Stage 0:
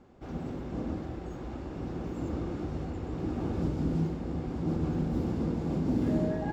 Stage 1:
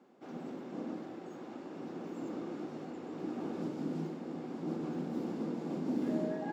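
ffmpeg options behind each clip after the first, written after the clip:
-af "highpass=f=200:w=0.5412,highpass=f=200:w=1.3066,volume=-4dB"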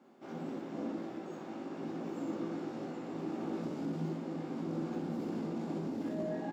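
-af "bandreject=f=460:w=14,alimiter=level_in=9dB:limit=-24dB:level=0:latency=1:release=13,volume=-9dB,aecho=1:1:18|61:0.668|0.631"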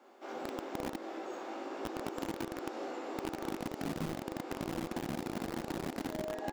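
-filter_complex "[0:a]acrossover=split=340|2200[a][b][c];[a]acrusher=bits=5:mix=0:aa=0.000001[d];[d][b][c]amix=inputs=3:normalize=0,acompressor=threshold=-39dB:ratio=6,volume=6dB"

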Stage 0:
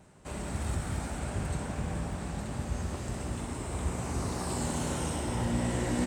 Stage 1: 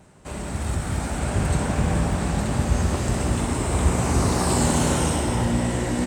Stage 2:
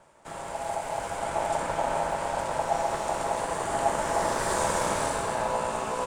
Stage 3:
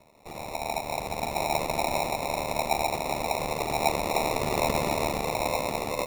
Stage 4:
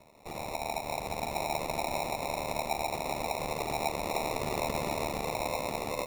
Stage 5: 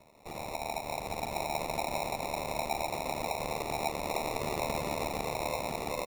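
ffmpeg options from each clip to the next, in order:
-af "dynaudnorm=f=270:g=9:m=7dB,volume=5.5dB"
-af "aeval=exprs='val(0)*sin(2*PI*750*n/s)':c=same,volume=-3.5dB"
-af "acrusher=samples=28:mix=1:aa=0.000001"
-af "acompressor=threshold=-33dB:ratio=2"
-af "aecho=1:1:840:0.335,volume=-1.5dB"

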